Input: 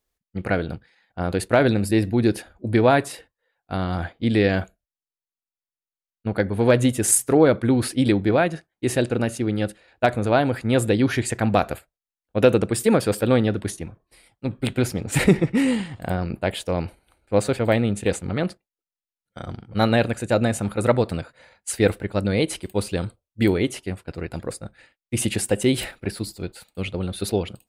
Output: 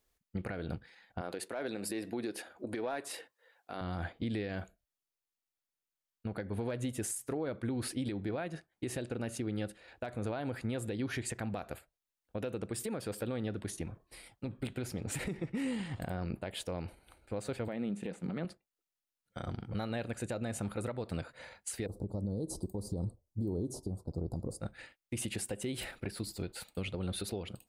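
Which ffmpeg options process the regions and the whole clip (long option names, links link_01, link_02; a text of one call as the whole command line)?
ffmpeg -i in.wav -filter_complex "[0:a]asettb=1/sr,asplit=3[link_01][link_02][link_03];[link_01]atrim=end=1.214[link_04];[link_02]atrim=start=1.21:end=3.81,asetpts=PTS-STARTPTS,afade=type=in:duration=0.004:curve=qsin,afade=type=out:start_time=2.596:duration=0.004:curve=qsin,highpass=320,acontrast=41[link_05];[link_03]atrim=start=3.806[link_06];[link_04][link_05]acrossfade=duration=0.004:curve1=hsin:curve2=qsin[link_07];[link_07][link_06]acrossfade=duration=0.004:curve1=qsin:curve2=hsin,asettb=1/sr,asplit=3[link_08][link_09][link_10];[link_08]atrim=end=17.684[link_11];[link_09]atrim=start=17.68:end=18.45,asetpts=PTS-STARTPTS,afade=type=in:duration=0.004:curve=qsin,afade=type=out:start_time=0.766:duration=0.004:curve=qsin,acrossover=split=3000[link_12][link_13];[link_13]acompressor=threshold=-41dB:ratio=4:attack=1:release=60[link_14];[link_12][link_14]amix=inputs=2:normalize=0,lowshelf=frequency=130:width_type=q:width=3:gain=-9.5[link_15];[link_10]atrim=start=18.446[link_16];[link_11][link_15]acrossfade=duration=0.004:curve1=hsin:curve2=qsin[link_17];[link_17][link_16]acrossfade=duration=0.004:curve1=qsin:curve2=hsin,asettb=1/sr,asplit=3[link_18][link_19][link_20];[link_18]atrim=end=21.864[link_21];[link_19]atrim=start=21.86:end=24.6,asetpts=PTS-STARTPTS,afade=type=in:duration=0.004:curve=qsin,afade=type=out:start_time=2.736:duration=0.004:curve=qsin,lowshelf=frequency=480:gain=11,acompressor=threshold=-18dB:ratio=3:attack=3.2:release=140:knee=1:detection=peak,asuperstop=centerf=2200:order=8:qfactor=0.62[link_22];[link_20]atrim=start=24.596[link_23];[link_21][link_22]acrossfade=duration=0.004:curve1=hsin:curve2=qsin[link_24];[link_24][link_23]acrossfade=duration=0.004:curve1=qsin:curve2=hsin,acompressor=threshold=-33dB:ratio=5,alimiter=level_in=4.5dB:limit=-24dB:level=0:latency=1:release=141,volume=-4.5dB,volume=1dB" out.wav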